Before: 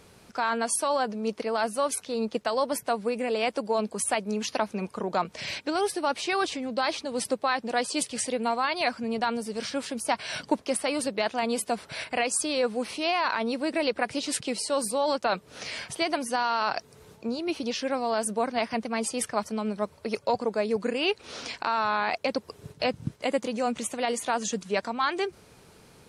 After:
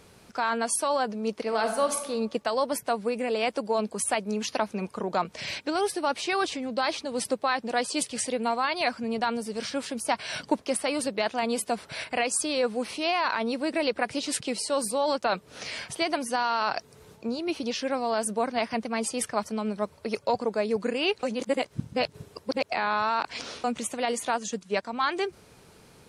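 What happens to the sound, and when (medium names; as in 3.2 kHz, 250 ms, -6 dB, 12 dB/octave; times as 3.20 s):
1.40–2.06 s: reverb throw, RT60 0.94 s, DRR 5 dB
21.23–23.64 s: reverse
24.36–24.93 s: upward expansion, over -40 dBFS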